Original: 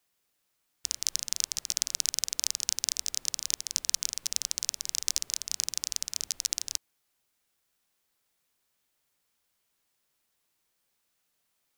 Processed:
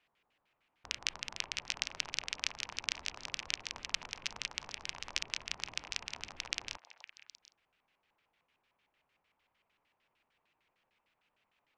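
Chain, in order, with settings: LFO low-pass square 6.6 Hz 960–2600 Hz; delay with a stepping band-pass 0.256 s, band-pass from 760 Hz, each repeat 1.4 oct, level -9 dB; gain +2.5 dB

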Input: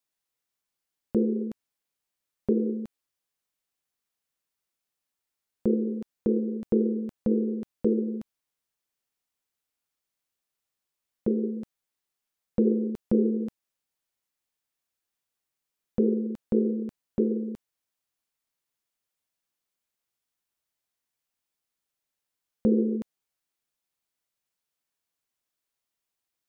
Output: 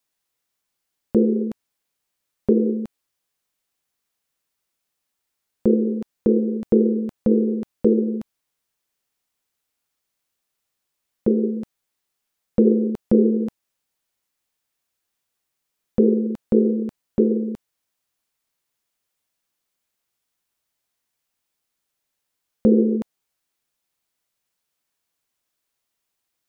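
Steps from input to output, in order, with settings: dynamic EQ 840 Hz, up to +6 dB, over -44 dBFS, Q 1.4; gain +6.5 dB

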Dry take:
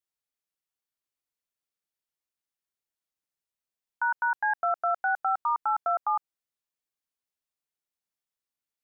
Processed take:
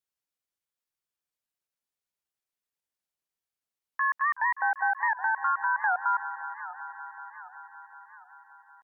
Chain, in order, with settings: band-limited delay 0.189 s, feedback 84%, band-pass 890 Hz, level -13.5 dB; pitch shift +2.5 st; record warp 78 rpm, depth 160 cents

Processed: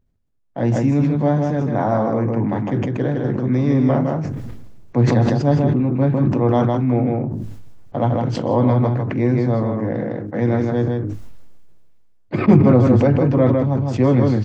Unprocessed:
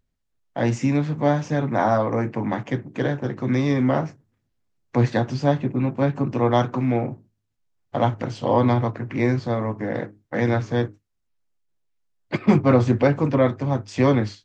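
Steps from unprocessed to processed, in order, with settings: tilt shelf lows +6 dB; on a send: echo 0.157 s -5.5 dB; on the sum: sustainer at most 25 dB/s; gain -2.5 dB

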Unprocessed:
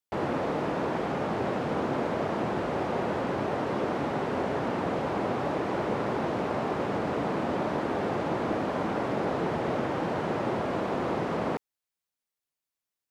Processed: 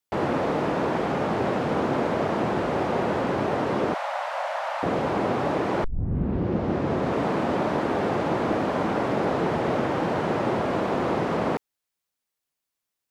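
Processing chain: 3.94–4.83 steep high-pass 560 Hz 96 dB/oct; 5.84 tape start 1.39 s; gain +4.5 dB

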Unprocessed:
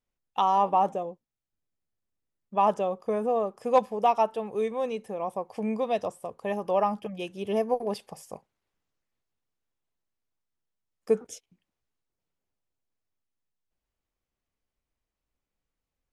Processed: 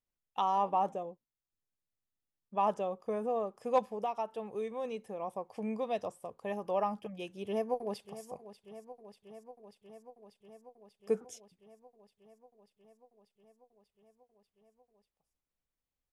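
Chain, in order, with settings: 3.92–4.85 compressor 3:1, threshold -26 dBFS, peak gain reduction 6.5 dB; 7.45–8.25 echo throw 0.59 s, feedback 80%, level -14 dB; gain -7 dB

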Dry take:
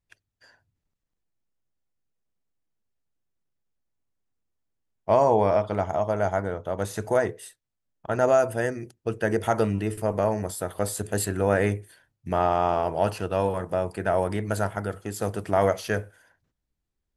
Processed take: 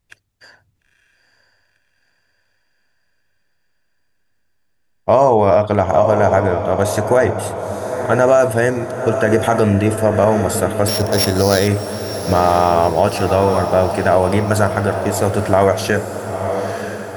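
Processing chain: 10.88–11.68 sample sorter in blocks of 8 samples; diffused feedback echo 0.942 s, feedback 54%, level -10 dB; maximiser +14 dB; gain -2 dB

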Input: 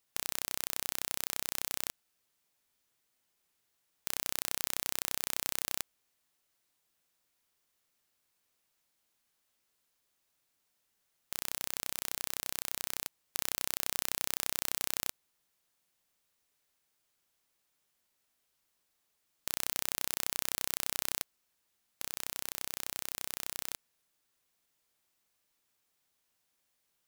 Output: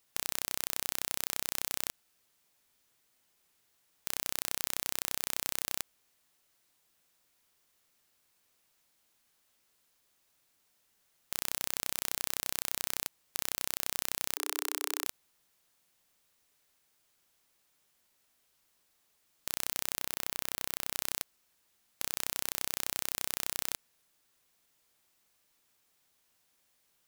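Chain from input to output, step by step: 14.36–15.05 rippled Chebyshev high-pass 290 Hz, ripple 6 dB; limiter -10.5 dBFS, peak gain reduction 6 dB; 20–20.93 bell 7900 Hz -4 dB 2 oct; gain +5.5 dB

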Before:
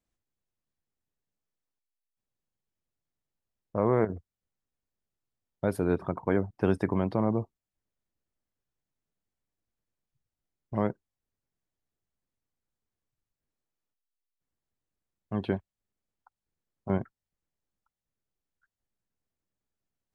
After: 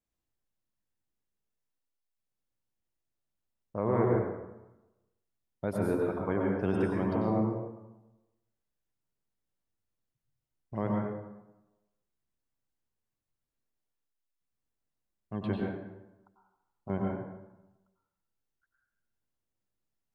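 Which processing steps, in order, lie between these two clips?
plate-style reverb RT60 1 s, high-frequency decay 0.65×, pre-delay 85 ms, DRR -2 dB; gain -5.5 dB

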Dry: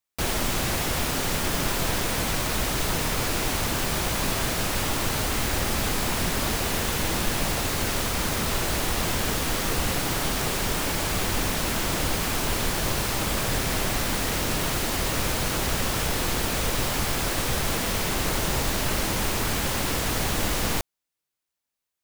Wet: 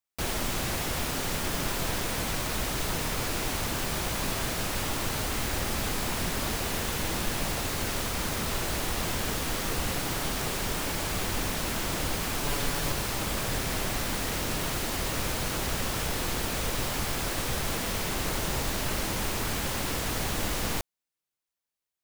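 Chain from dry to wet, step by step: 12.44–12.92 comb 7 ms, depth 53%; gain -4.5 dB

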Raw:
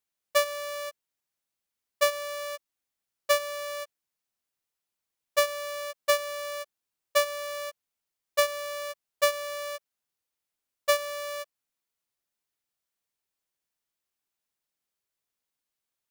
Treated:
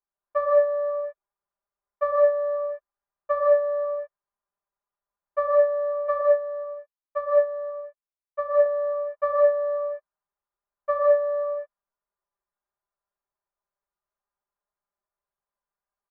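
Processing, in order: LPF 1300 Hz 24 dB/oct; bell 230 Hz -14.5 dB 1.6 oct; comb 5 ms, depth 83%; non-linear reverb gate 0.23 s rising, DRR -3.5 dB; 6.21–8.66 upward expander 1.5:1, over -39 dBFS

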